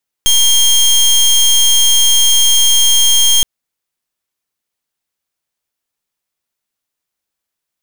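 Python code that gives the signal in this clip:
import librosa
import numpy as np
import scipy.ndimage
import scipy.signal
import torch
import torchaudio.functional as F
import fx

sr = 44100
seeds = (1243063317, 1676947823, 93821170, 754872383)

y = fx.pulse(sr, length_s=3.17, hz=3220.0, level_db=-9.0, duty_pct=22)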